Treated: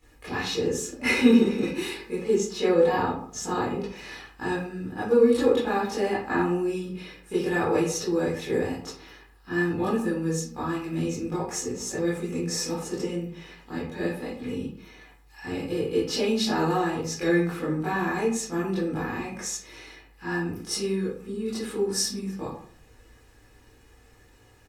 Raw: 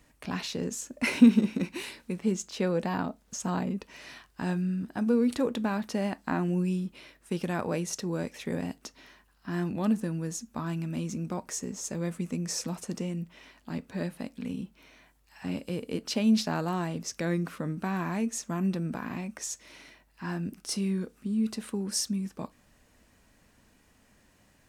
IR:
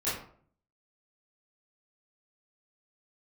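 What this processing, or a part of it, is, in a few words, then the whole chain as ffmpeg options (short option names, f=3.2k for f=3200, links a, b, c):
microphone above a desk: -filter_complex "[0:a]aecho=1:1:2.4:0.6[a];[1:a]atrim=start_sample=2205[b];[a][b]afir=irnorm=-1:irlink=0,volume=-2dB"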